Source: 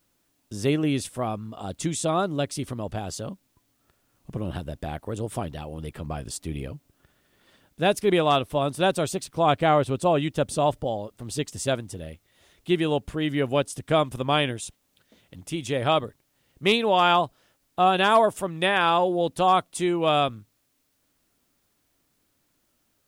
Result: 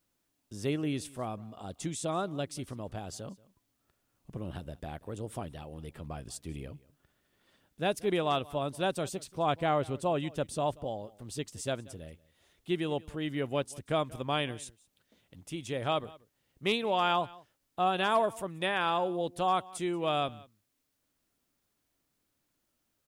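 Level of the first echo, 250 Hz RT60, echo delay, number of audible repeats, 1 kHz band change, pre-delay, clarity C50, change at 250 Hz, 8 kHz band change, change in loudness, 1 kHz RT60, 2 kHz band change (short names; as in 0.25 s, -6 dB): -22.0 dB, none, 0.183 s, 1, -8.5 dB, none, none, -8.5 dB, -8.5 dB, -8.5 dB, none, -8.5 dB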